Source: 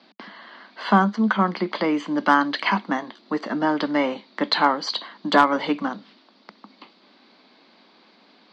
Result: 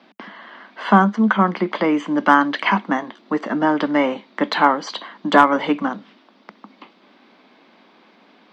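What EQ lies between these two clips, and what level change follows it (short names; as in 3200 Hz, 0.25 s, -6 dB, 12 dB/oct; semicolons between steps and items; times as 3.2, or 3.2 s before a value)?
bell 4400 Hz -12 dB 0.46 oct; +4.0 dB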